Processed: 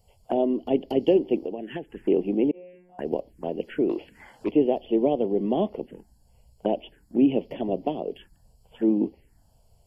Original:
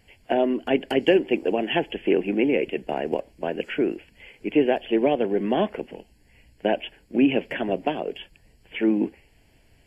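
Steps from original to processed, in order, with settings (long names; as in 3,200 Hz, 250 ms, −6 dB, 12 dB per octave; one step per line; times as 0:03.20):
parametric band 2,400 Hz −13 dB 0.89 octaves
0:01.37–0:01.97: downward compressor 6 to 1, threshold −28 dBFS, peak gain reduction 10.5 dB
0:02.51–0:02.99: tuned comb filter 180 Hz, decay 1.5 s, mix 100%
0:03.89–0:04.51: mid-hump overdrive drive 22 dB, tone 2,300 Hz, clips at −15.5 dBFS
phaser swept by the level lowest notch 280 Hz, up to 1,600 Hz, full sweep at −25 dBFS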